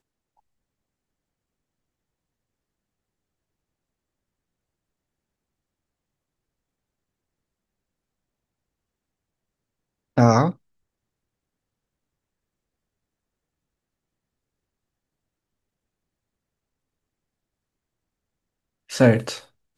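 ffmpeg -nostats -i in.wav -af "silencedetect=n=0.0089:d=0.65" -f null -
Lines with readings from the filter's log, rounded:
silence_start: 0.00
silence_end: 10.17 | silence_duration: 10.17
silence_start: 10.53
silence_end: 18.90 | silence_duration: 8.37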